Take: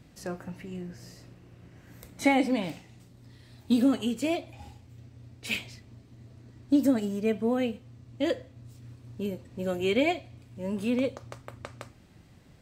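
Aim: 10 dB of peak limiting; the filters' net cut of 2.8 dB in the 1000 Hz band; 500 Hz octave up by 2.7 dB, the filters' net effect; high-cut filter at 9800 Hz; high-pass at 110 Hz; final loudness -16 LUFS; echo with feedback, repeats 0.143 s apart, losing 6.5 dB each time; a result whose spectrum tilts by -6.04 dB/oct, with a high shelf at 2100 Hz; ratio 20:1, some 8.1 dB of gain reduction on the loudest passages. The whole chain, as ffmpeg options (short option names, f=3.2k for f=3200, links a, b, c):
-af "highpass=110,lowpass=9.8k,equalizer=f=500:t=o:g=5,equalizer=f=1k:t=o:g=-6,highshelf=f=2.1k:g=-6.5,acompressor=threshold=-25dB:ratio=20,alimiter=level_in=1.5dB:limit=-24dB:level=0:latency=1,volume=-1.5dB,aecho=1:1:143|286|429|572|715|858:0.473|0.222|0.105|0.0491|0.0231|0.0109,volume=19.5dB"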